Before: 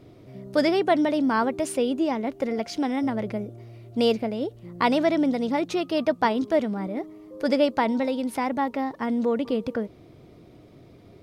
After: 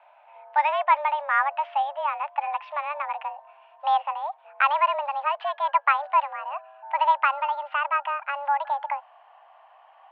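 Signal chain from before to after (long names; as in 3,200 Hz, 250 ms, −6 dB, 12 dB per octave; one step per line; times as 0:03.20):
gliding playback speed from 99% → 123%
single-sideband voice off tune +290 Hz 460–2,600 Hz
level +2.5 dB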